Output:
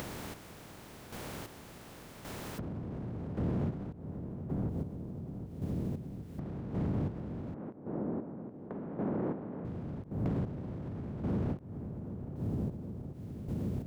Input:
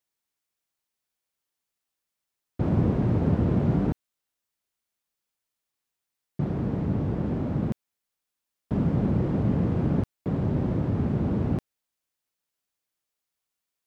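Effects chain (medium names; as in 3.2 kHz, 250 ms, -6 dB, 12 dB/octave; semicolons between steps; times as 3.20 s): spectral levelling over time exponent 0.6; waveshaping leveller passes 1; filtered feedback delay 770 ms, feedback 48%, low-pass 1 kHz, level -14 dB; upward compressor, threshold -21 dBFS; peak limiter -15.5 dBFS, peak gain reduction 5.5 dB; 7.54–9.65 s: three-band isolator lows -21 dB, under 200 Hz, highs -23 dB, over 2 kHz; compression, threshold -30 dBFS, peak gain reduction 11 dB; square tremolo 0.89 Hz, depth 60%, duty 30%; endings held to a fixed fall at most 270 dB/s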